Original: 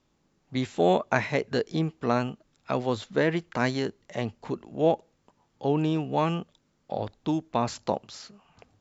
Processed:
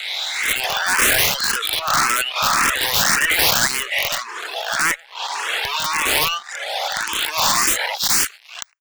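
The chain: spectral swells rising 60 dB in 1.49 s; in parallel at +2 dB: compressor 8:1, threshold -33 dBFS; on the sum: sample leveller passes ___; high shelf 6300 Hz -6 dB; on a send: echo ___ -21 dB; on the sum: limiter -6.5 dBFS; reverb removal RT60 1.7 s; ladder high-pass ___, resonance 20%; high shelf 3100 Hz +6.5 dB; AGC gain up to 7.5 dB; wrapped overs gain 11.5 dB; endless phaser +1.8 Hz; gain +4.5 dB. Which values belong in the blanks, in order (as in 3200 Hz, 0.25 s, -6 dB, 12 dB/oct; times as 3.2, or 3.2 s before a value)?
5, 0.106 s, 1100 Hz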